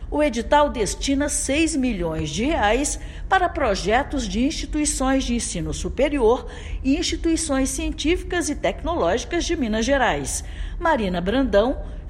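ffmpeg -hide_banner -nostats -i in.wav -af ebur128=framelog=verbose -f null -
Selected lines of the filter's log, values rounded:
Integrated loudness:
  I:         -21.8 LUFS
  Threshold: -31.9 LUFS
Loudness range:
  LRA:         1.3 LU
  Threshold: -42.1 LUFS
  LRA low:   -22.7 LUFS
  LRA high:  -21.3 LUFS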